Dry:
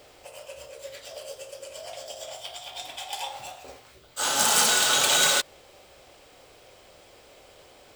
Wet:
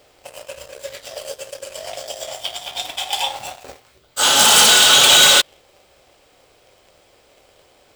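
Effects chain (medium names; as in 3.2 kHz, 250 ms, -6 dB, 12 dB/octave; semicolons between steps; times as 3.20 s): dynamic bell 3.2 kHz, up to +7 dB, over -41 dBFS, Q 2.3; waveshaping leveller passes 2; trim +2.5 dB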